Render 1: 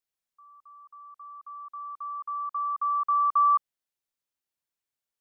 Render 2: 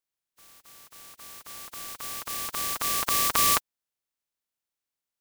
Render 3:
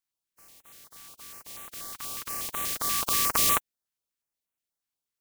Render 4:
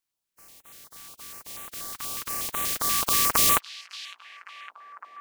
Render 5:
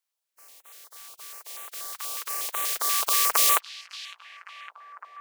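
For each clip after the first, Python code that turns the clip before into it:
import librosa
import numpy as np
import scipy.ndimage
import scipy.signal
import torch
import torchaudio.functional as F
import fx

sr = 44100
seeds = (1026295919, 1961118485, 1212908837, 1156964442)

y1 = fx.spec_flatten(x, sr, power=0.21)
y2 = fx.filter_held_notch(y1, sr, hz=8.3, low_hz=520.0, high_hz=4900.0)
y3 = fx.echo_stepped(y2, sr, ms=557, hz=3400.0, octaves=-0.7, feedback_pct=70, wet_db=-10)
y3 = y3 * 10.0 ** (3.0 / 20.0)
y4 = scipy.signal.sosfilt(scipy.signal.butter(4, 430.0, 'highpass', fs=sr, output='sos'), y3)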